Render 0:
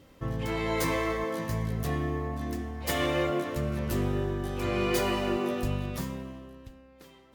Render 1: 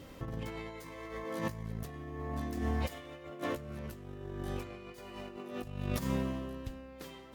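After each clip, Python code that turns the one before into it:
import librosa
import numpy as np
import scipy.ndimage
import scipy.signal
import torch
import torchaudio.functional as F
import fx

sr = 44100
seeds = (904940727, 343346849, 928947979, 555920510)

y = fx.over_compress(x, sr, threshold_db=-36.0, ratio=-0.5)
y = y * librosa.db_to_amplitude(-1.5)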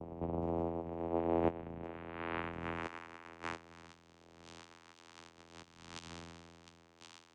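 y = fx.filter_sweep_bandpass(x, sr, from_hz=400.0, to_hz=3800.0, start_s=0.86, end_s=4.27, q=3.0)
y = fx.vocoder(y, sr, bands=4, carrier='saw', carrier_hz=84.0)
y = y * librosa.db_to_amplitude(11.5)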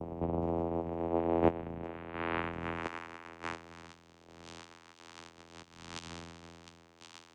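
y = fx.tremolo_shape(x, sr, shape='saw_down', hz=1.4, depth_pct=40)
y = y * librosa.db_to_amplitude(6.0)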